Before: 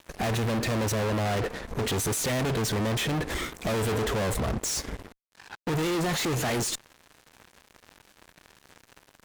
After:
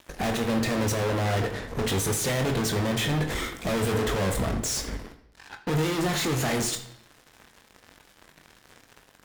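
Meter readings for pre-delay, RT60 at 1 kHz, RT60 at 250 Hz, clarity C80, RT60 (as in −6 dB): 21 ms, 0.80 s, 0.85 s, 13.5 dB, 0.85 s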